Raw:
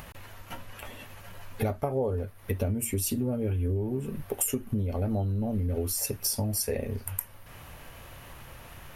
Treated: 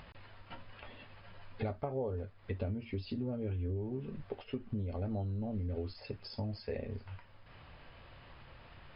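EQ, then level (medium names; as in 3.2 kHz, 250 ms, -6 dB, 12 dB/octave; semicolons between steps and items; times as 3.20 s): brick-wall FIR low-pass 5.2 kHz; -8.0 dB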